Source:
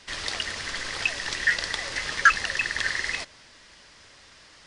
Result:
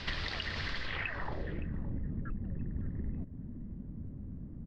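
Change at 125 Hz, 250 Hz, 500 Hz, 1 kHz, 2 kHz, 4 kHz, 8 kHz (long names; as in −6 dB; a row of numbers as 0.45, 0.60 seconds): +9.0 dB, +6.5 dB, −6.0 dB, −16.0 dB, −17.0 dB, −13.0 dB, below −25 dB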